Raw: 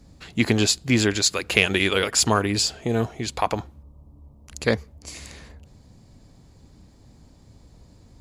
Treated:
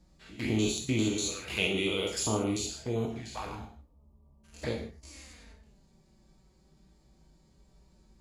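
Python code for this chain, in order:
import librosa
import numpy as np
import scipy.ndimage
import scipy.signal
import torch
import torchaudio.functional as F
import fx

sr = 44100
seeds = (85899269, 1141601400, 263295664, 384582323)

y = fx.spec_steps(x, sr, hold_ms=100)
y = fx.env_flanger(y, sr, rest_ms=6.0, full_db=-21.0)
y = fx.rev_gated(y, sr, seeds[0], gate_ms=190, shape='falling', drr_db=0.5)
y = y * librosa.db_to_amplitude(-8.0)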